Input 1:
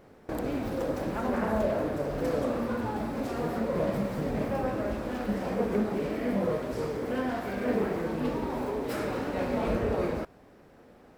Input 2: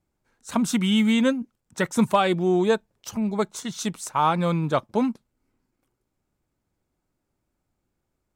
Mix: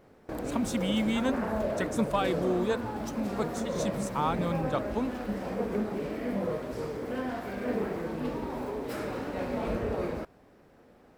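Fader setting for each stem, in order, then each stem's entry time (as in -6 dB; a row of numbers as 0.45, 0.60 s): -3.0, -8.5 dB; 0.00, 0.00 s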